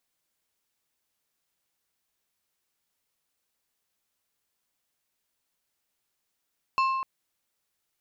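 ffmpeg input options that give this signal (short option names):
-f lavfi -i "aevalsrc='0.1*pow(10,-3*t/1.75)*sin(2*PI*1060*t)+0.0398*pow(10,-3*t/0.921)*sin(2*PI*2650*t)+0.0158*pow(10,-3*t/0.663)*sin(2*PI*4240*t)+0.00631*pow(10,-3*t/0.567)*sin(2*PI*5300*t)+0.00251*pow(10,-3*t/0.472)*sin(2*PI*6890*t)':d=0.25:s=44100"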